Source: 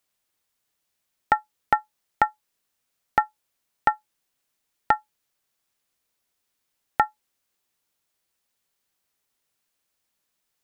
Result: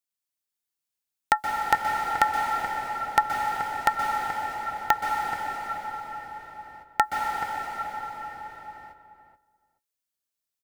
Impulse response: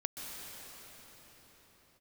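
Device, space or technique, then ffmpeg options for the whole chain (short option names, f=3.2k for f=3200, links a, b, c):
cathedral: -filter_complex "[0:a]agate=range=-17dB:threshold=-46dB:ratio=16:detection=peak[a];[1:a]atrim=start_sample=2205[b];[a][b]afir=irnorm=-1:irlink=0,highshelf=f=3.4k:g=9,asplit=2[c][d];[d]adelay=429,lowpass=f=1.5k:p=1,volume=-8dB,asplit=2[e][f];[f]adelay=429,lowpass=f=1.5k:p=1,volume=0.15[g];[c][e][g]amix=inputs=3:normalize=0"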